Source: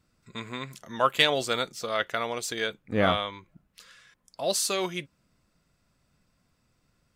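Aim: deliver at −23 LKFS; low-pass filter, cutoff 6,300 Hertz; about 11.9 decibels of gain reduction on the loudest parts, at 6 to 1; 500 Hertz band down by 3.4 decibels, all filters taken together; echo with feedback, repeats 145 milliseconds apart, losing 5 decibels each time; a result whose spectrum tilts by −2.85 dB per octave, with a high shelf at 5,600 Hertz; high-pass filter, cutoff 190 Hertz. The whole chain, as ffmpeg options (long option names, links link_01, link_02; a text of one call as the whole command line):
ffmpeg -i in.wav -af "highpass=190,lowpass=6300,equalizer=frequency=500:width_type=o:gain=-4,highshelf=frequency=5600:gain=-8.5,acompressor=threshold=-32dB:ratio=6,aecho=1:1:145|290|435|580|725|870|1015:0.562|0.315|0.176|0.0988|0.0553|0.031|0.0173,volume=13.5dB" out.wav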